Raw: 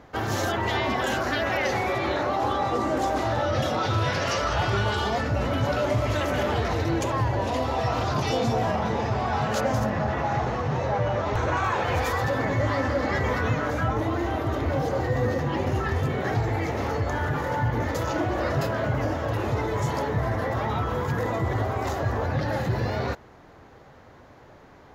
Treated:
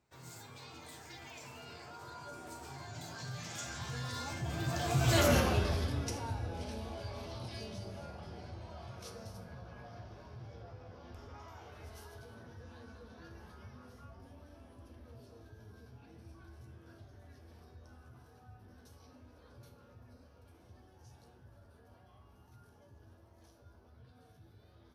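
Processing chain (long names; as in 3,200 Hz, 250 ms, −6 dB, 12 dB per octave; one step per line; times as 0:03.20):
source passing by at 0:05.26, 58 m/s, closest 9.7 metres
on a send at −7.5 dB: convolution reverb, pre-delay 8 ms
on the sum: hard clipping −17.5 dBFS, distortion −32 dB
bass and treble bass +6 dB, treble +4 dB
tuned comb filter 83 Hz, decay 0.54 s, harmonics all, mix 70%
in parallel at −1 dB: downward compressor, threshold −54 dBFS, peak gain reduction 24.5 dB
on the sum: high-shelf EQ 3,800 Hz +12 dB
notch filter 1,900 Hz, Q 21
level +2.5 dB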